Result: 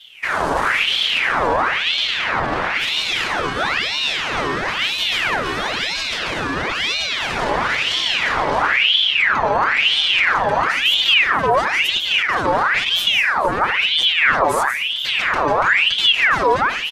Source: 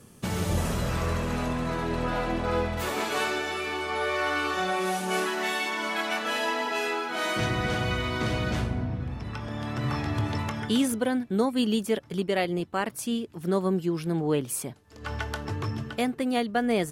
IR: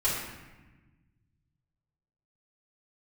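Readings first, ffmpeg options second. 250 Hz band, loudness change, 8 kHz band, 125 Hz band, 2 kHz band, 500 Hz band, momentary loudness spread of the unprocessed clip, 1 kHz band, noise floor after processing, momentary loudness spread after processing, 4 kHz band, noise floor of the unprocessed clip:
-3.5 dB, +12.0 dB, +4.5 dB, -4.5 dB, +15.0 dB, +5.5 dB, 6 LU, +12.0 dB, -24 dBFS, 7 LU, +19.5 dB, -46 dBFS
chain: -filter_complex "[0:a]aeval=exprs='0.0562*(abs(mod(val(0)/0.0562+3,4)-2)-1)':c=same,lowpass=8000,equalizer=f=810:w=1.3:g=12,aecho=1:1:7.2:0.9,asplit=2[s0][s1];[1:a]atrim=start_sample=2205,asetrate=61740,aresample=44100,adelay=148[s2];[s1][s2]afir=irnorm=-1:irlink=0,volume=0.188[s3];[s0][s3]amix=inputs=2:normalize=0,alimiter=limit=0.0841:level=0:latency=1:release=15,dynaudnorm=f=110:g=5:m=2.66,lowshelf=f=480:t=q:w=1.5:g=8,bandreject=f=6300:w=12,aecho=1:1:475:0.141,aeval=exprs='val(0)*sin(2*PI*2000*n/s+2000*0.65/1*sin(2*PI*1*n/s))':c=same"

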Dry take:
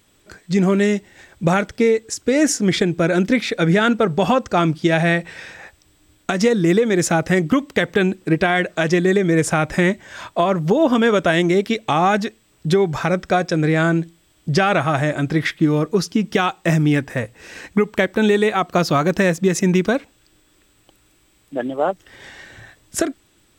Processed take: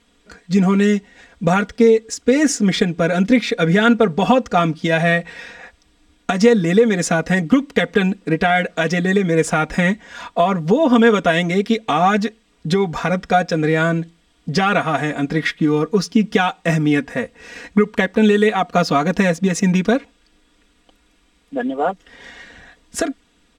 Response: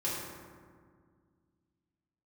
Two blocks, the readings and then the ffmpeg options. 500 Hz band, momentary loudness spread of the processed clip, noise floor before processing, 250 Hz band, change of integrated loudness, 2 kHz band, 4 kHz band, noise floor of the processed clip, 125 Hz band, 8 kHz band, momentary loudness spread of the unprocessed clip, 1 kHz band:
+1.0 dB, 10 LU, -58 dBFS, +1.5 dB, +1.0 dB, +1.0 dB, +1.0 dB, -59 dBFS, 0.0 dB, -1.0 dB, 9 LU, +2.0 dB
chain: -af "aecho=1:1:4.2:0.84,adynamicsmooth=sensitivity=6:basefreq=7800,volume=0.891"

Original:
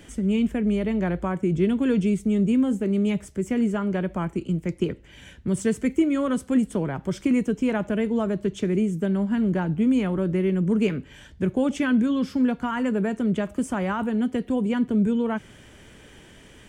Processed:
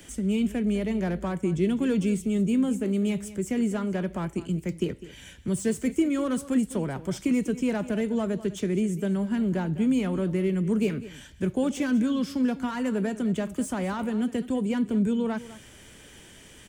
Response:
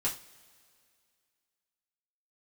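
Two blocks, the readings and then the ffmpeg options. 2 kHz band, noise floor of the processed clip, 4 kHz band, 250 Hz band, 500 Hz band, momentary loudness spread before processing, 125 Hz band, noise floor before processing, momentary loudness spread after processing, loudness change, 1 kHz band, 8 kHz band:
-3.5 dB, -50 dBFS, -0.5 dB, -3.0 dB, -3.0 dB, 6 LU, -3.0 dB, -49 dBFS, 6 LU, -3.0 dB, -4.0 dB, +3.0 dB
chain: -filter_complex "[0:a]highshelf=f=3900:g=11,acrossover=split=150|800[s0][s1][s2];[s2]asoftclip=type=tanh:threshold=0.0299[s3];[s0][s1][s3]amix=inputs=3:normalize=0,aecho=1:1:202:0.158,volume=0.708"

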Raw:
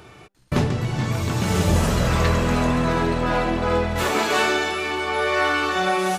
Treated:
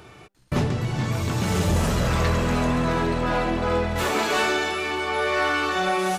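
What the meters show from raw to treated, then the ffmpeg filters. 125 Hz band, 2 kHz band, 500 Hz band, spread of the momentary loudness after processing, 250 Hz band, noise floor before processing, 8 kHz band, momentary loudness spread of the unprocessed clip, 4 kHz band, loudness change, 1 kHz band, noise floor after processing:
-2.0 dB, -2.0 dB, -2.0 dB, 4 LU, -2.0 dB, -46 dBFS, -2.0 dB, 4 LU, -2.0 dB, -2.0 dB, -2.0 dB, -47 dBFS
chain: -af "asoftclip=type=tanh:threshold=0.251,volume=0.891"

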